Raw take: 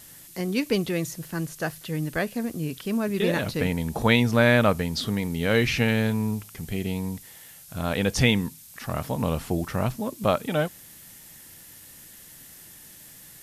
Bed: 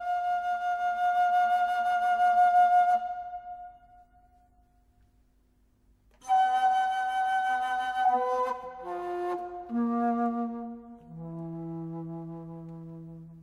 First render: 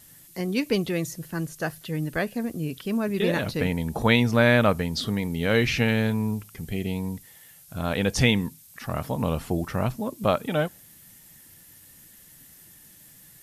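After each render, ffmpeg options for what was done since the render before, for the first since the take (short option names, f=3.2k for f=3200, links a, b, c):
-af "afftdn=nr=6:nf=-48"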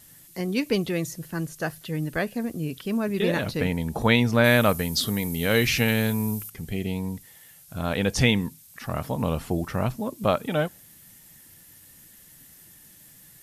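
-filter_complex "[0:a]asettb=1/sr,asplit=3[a][b][c];[a]atrim=end=4.444[d];[b]atrim=start=4.44:end=6.5,asetpts=PTS-STARTPTS,afade=t=in:d=0.004:c=qsin,afade=t=out:st=2.056:d=0.004:c=qsin,aemphasis=mode=production:type=50fm[e];[c]atrim=start=6.496[f];[d][e]acrossfade=d=0.004:c1=hsin:c2=qsin[g];[g][f]acrossfade=d=0.004:c1=qsin:c2=hsin"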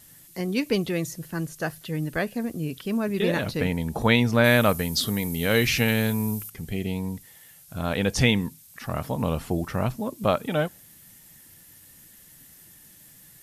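-af anull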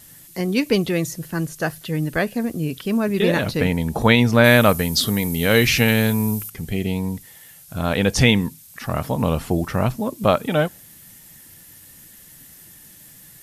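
-af "volume=5.5dB,alimiter=limit=-1dB:level=0:latency=1"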